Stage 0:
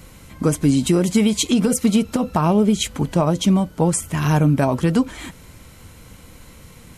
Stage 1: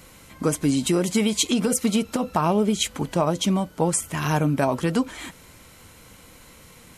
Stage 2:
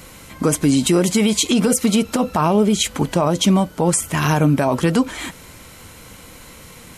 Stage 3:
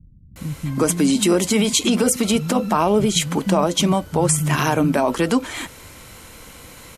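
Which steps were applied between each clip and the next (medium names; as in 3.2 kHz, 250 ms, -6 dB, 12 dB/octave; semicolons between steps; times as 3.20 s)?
bass shelf 220 Hz -9.5 dB; trim -1 dB
peak limiter -14.5 dBFS, peak gain reduction 6.5 dB; trim +7.5 dB
bands offset in time lows, highs 360 ms, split 180 Hz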